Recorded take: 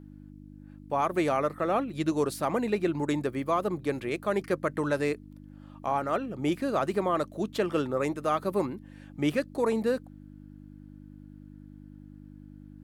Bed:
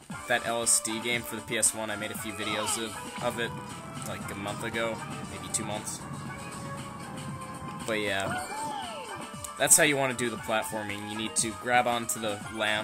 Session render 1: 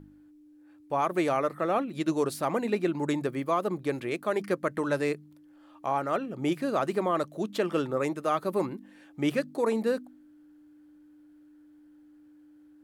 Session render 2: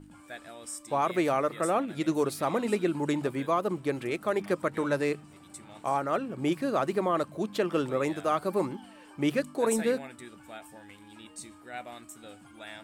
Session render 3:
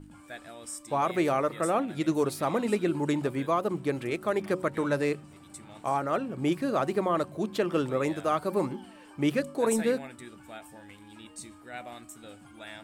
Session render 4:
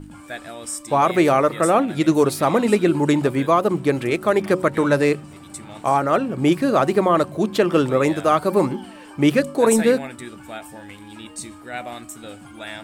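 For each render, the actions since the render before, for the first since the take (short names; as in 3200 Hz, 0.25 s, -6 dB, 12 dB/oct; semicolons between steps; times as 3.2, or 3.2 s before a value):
de-hum 50 Hz, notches 5
add bed -16.5 dB
low shelf 160 Hz +4.5 dB; de-hum 185.6 Hz, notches 5
gain +10 dB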